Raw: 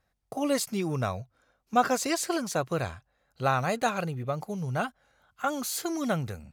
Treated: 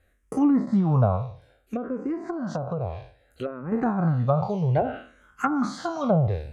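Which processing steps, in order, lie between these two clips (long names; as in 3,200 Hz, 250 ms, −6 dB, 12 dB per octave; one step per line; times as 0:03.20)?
peak hold with a decay on every bin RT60 0.45 s
treble cut that deepens with the level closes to 580 Hz, closed at −22.5 dBFS
low-shelf EQ 440 Hz +4 dB
0:01.16–0:03.72: downward compressor 5 to 1, threshold −32 dBFS, peak gain reduction 11.5 dB
frequency shifter mixed with the dry sound −0.6 Hz
level +8 dB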